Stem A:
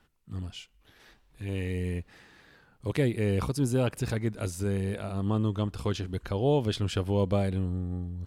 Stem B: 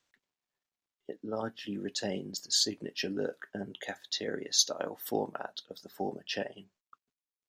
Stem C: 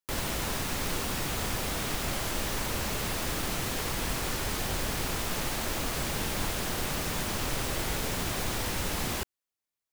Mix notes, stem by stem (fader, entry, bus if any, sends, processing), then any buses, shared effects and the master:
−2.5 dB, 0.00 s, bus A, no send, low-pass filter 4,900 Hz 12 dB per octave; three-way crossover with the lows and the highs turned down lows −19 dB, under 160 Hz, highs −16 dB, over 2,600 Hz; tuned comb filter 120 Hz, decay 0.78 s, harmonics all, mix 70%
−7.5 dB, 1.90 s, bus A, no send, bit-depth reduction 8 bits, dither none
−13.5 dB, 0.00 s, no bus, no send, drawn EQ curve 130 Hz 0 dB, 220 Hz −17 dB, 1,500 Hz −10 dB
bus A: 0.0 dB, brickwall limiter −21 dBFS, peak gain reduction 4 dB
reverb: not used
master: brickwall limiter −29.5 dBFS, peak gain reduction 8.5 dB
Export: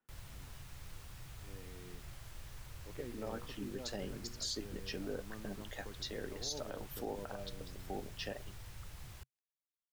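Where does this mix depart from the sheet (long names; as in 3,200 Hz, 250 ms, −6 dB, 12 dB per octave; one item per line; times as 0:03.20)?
stem A −2.5 dB → −10.5 dB
stem B: missing bit-depth reduction 8 bits, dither none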